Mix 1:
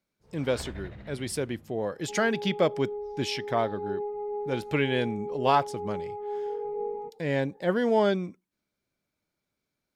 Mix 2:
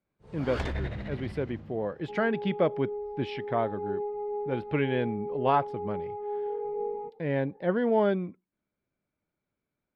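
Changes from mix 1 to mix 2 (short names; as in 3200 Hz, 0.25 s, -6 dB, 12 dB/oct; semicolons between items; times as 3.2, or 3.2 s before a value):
speech: add air absorption 430 m; first sound +8.5 dB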